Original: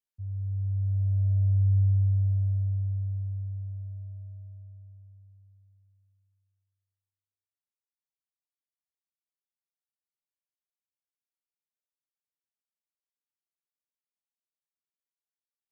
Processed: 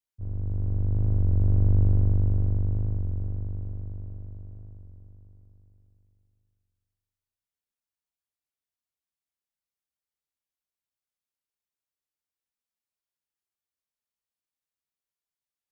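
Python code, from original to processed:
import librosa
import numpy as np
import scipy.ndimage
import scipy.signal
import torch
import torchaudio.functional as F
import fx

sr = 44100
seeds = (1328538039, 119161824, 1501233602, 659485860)

y = fx.octave_divider(x, sr, octaves=2, level_db=0.0)
y = fx.record_warp(y, sr, rpm=33.33, depth_cents=100.0)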